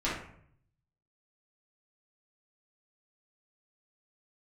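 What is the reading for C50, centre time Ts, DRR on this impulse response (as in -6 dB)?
2.5 dB, 46 ms, -9.5 dB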